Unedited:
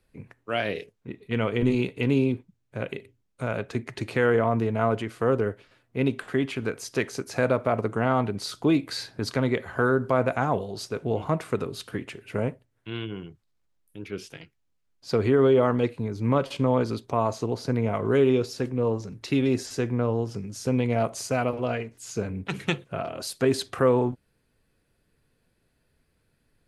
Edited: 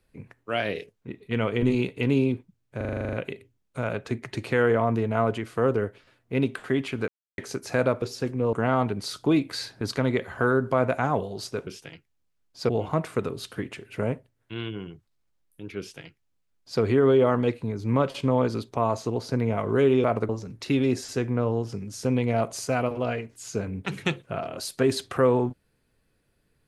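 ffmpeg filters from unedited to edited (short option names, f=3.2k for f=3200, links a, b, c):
-filter_complex "[0:a]asplit=18[a][b][c][d][e][f][g][h][i][j][k][l][m][n][o][p][q][r];[a]atrim=end=2.812[s];[b]atrim=start=2.768:end=2.812[t];[c]atrim=start=2.768:end=2.812[u];[d]atrim=start=2.768:end=2.812[v];[e]atrim=start=2.768:end=2.812[w];[f]atrim=start=2.768:end=2.812[x];[g]atrim=start=2.768:end=2.812[y];[h]atrim=start=2.768:end=2.812[z];[i]atrim=start=2.768:end=2.812[aa];[j]atrim=start=2.768:end=6.72,asetpts=PTS-STARTPTS,afade=t=out:st=3.948:d=0.004:c=hsin[ab];[k]atrim=start=6.72:end=7.02,asetpts=PTS-STARTPTS,volume=0[ac];[l]atrim=start=7.02:end=7.662,asetpts=PTS-STARTPTS,afade=t=in:d=0.004:c=hsin[ad];[m]atrim=start=18.398:end=18.912[ae];[n]atrim=start=7.908:end=11.052[af];[o]atrim=start=14.148:end=15.172[ag];[p]atrim=start=11.048:end=18.402[ah];[q]atrim=start=7.658:end=7.912[ai];[r]atrim=start=18.908[aj];[s][t]acrossfade=d=0.004:c1=hsin:c2=hsin[ak];[ak][u]acrossfade=d=0.004:c1=hsin:c2=hsin[al];[al][v]acrossfade=d=0.004:c1=hsin:c2=hsin[am];[am][w]acrossfade=d=0.004:c1=hsin:c2=hsin[an];[an][x]acrossfade=d=0.004:c1=hsin:c2=hsin[ao];[ao][y]acrossfade=d=0.004:c1=hsin:c2=hsin[ap];[ap][z]acrossfade=d=0.004:c1=hsin:c2=hsin[aq];[aq][aa]acrossfade=d=0.004:c1=hsin:c2=hsin[ar];[ab][ac][ad]concat=n=3:v=0:a=1[as];[ar][as]acrossfade=d=0.004:c1=hsin:c2=hsin[at];[at][ae]acrossfade=d=0.004:c1=hsin:c2=hsin[au];[au][af]acrossfade=d=0.004:c1=hsin:c2=hsin[av];[av][ag]acrossfade=d=0.004:c1=hsin:c2=hsin[aw];[aw][ah]acrossfade=d=0.004:c1=hsin:c2=hsin[ax];[ax][ai]acrossfade=d=0.004:c1=hsin:c2=hsin[ay];[ay][aj]acrossfade=d=0.004:c1=hsin:c2=hsin"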